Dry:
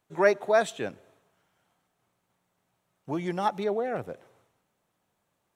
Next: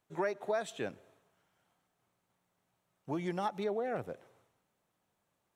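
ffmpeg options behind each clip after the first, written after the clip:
ffmpeg -i in.wav -af "acompressor=threshold=-26dB:ratio=6,volume=-4dB" out.wav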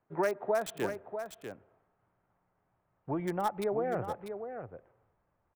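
ffmpeg -i in.wav -filter_complex "[0:a]acrossover=split=350|2000[link_01][link_02][link_03];[link_03]acrusher=bits=6:mix=0:aa=0.000001[link_04];[link_01][link_02][link_04]amix=inputs=3:normalize=0,aecho=1:1:643:0.376,asubboost=boost=5.5:cutoff=81,volume=4dB" out.wav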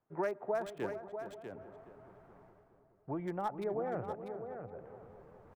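ffmpeg -i in.wav -filter_complex "[0:a]areverse,acompressor=mode=upward:threshold=-39dB:ratio=2.5,areverse,lowpass=frequency=2300:poles=1,asplit=2[link_01][link_02];[link_02]adelay=419,lowpass=frequency=1400:poles=1,volume=-11.5dB,asplit=2[link_03][link_04];[link_04]adelay=419,lowpass=frequency=1400:poles=1,volume=0.53,asplit=2[link_05][link_06];[link_06]adelay=419,lowpass=frequency=1400:poles=1,volume=0.53,asplit=2[link_07][link_08];[link_08]adelay=419,lowpass=frequency=1400:poles=1,volume=0.53,asplit=2[link_09][link_10];[link_10]adelay=419,lowpass=frequency=1400:poles=1,volume=0.53,asplit=2[link_11][link_12];[link_12]adelay=419,lowpass=frequency=1400:poles=1,volume=0.53[link_13];[link_01][link_03][link_05][link_07][link_09][link_11][link_13]amix=inputs=7:normalize=0,volume=-4.5dB" out.wav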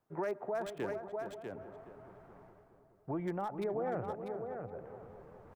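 ffmpeg -i in.wav -af "alimiter=level_in=6.5dB:limit=-24dB:level=0:latency=1:release=49,volume=-6.5dB,volume=2.5dB" out.wav

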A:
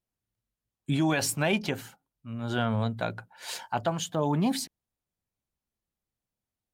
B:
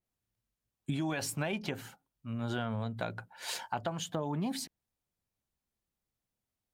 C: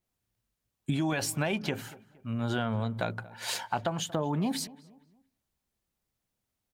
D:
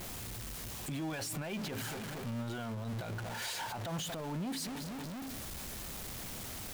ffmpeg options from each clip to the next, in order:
ffmpeg -i in.wav -af "acompressor=threshold=-31dB:ratio=6,adynamicequalizer=threshold=0.00355:dfrequency=3400:dqfactor=0.7:tfrequency=3400:tqfactor=0.7:attack=5:release=100:ratio=0.375:range=2:mode=cutabove:tftype=highshelf" out.wav
ffmpeg -i in.wav -filter_complex "[0:a]asplit=2[link_01][link_02];[link_02]adelay=233,lowpass=frequency=2100:poles=1,volume=-20dB,asplit=2[link_03][link_04];[link_04]adelay=233,lowpass=frequency=2100:poles=1,volume=0.39,asplit=2[link_05][link_06];[link_06]adelay=233,lowpass=frequency=2100:poles=1,volume=0.39[link_07];[link_01][link_03][link_05][link_07]amix=inputs=4:normalize=0,volume=4.5dB" out.wav
ffmpeg -i in.wav -af "aeval=exprs='val(0)+0.5*0.0355*sgn(val(0))':channel_layout=same,alimiter=level_in=1dB:limit=-24dB:level=0:latency=1:release=42,volume=-1dB,volume=-7dB" out.wav

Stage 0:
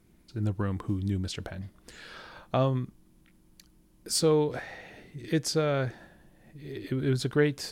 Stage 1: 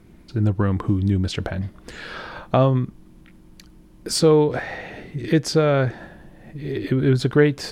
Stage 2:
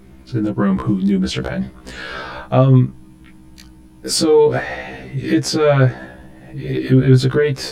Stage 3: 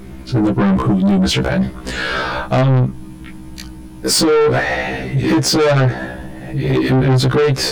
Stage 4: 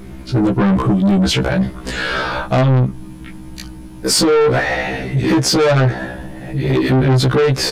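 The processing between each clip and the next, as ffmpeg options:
ffmpeg -i in.wav -filter_complex "[0:a]highshelf=frequency=4600:gain=-11,asplit=2[link_01][link_02];[link_02]acompressor=threshold=-35dB:ratio=6,volume=0dB[link_03];[link_01][link_03]amix=inputs=2:normalize=0,volume=7dB" out.wav
ffmpeg -i in.wav -af "alimiter=level_in=11dB:limit=-1dB:release=50:level=0:latency=1,afftfilt=real='re*1.73*eq(mod(b,3),0)':imag='im*1.73*eq(mod(b,3),0)':win_size=2048:overlap=0.75,volume=-3dB" out.wav
ffmpeg -i in.wav -filter_complex "[0:a]asplit=2[link_01][link_02];[link_02]alimiter=limit=-12dB:level=0:latency=1:release=275,volume=-0.5dB[link_03];[link_01][link_03]amix=inputs=2:normalize=0,asoftclip=type=tanh:threshold=-14dB,volume=4dB" out.wav
ffmpeg -i in.wav -af "aresample=32000,aresample=44100" out.wav

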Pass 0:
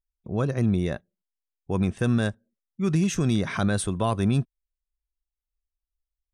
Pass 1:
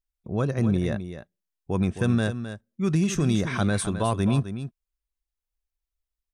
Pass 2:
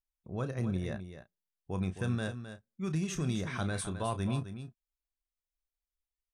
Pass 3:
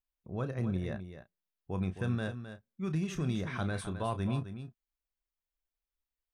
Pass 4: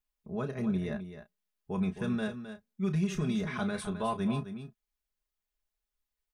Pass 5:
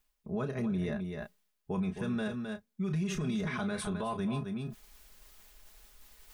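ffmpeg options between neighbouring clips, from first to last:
ffmpeg -i in.wav -af "aecho=1:1:262:0.299" out.wav
ffmpeg -i in.wav -filter_complex "[0:a]equalizer=frequency=270:width_type=o:width=1.8:gain=-3,asplit=2[link_01][link_02];[link_02]adelay=32,volume=-10.5dB[link_03];[link_01][link_03]amix=inputs=2:normalize=0,volume=-8.5dB" out.wav
ffmpeg -i in.wav -af "equalizer=frequency=7900:width_type=o:width=1.4:gain=-9" out.wav
ffmpeg -i in.wav -af "aecho=1:1:4.8:0.85" out.wav
ffmpeg -i in.wav -af "areverse,acompressor=mode=upward:threshold=-36dB:ratio=2.5,areverse,alimiter=level_in=5dB:limit=-24dB:level=0:latency=1:release=57,volume=-5dB,volume=3dB" out.wav

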